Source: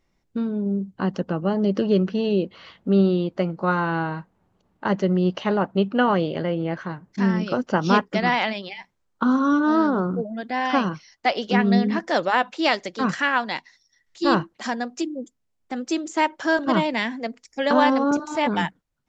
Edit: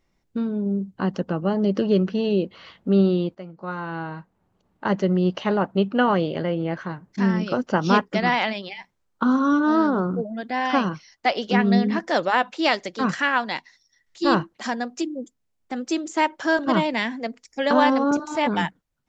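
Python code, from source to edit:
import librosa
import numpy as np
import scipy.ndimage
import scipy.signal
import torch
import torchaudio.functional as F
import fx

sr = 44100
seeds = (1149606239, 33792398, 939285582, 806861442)

y = fx.edit(x, sr, fx.fade_in_from(start_s=3.35, length_s=1.55, floor_db=-16.5), tone=tone)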